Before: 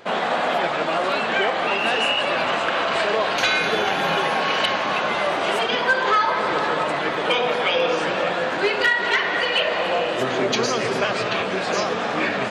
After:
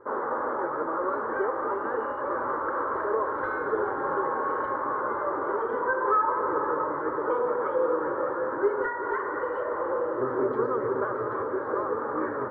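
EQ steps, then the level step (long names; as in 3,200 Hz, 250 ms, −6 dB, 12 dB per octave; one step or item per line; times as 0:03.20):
low-pass filter 1,300 Hz 24 dB per octave
phaser with its sweep stopped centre 700 Hz, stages 6
−1.5 dB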